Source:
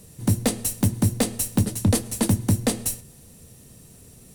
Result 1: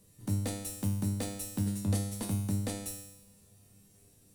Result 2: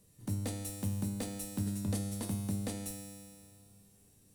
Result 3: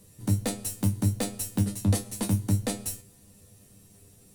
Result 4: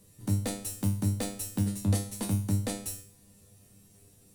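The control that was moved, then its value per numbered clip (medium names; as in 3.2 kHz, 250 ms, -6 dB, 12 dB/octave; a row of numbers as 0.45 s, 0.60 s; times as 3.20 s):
feedback comb, decay: 0.92 s, 2.2 s, 0.19 s, 0.43 s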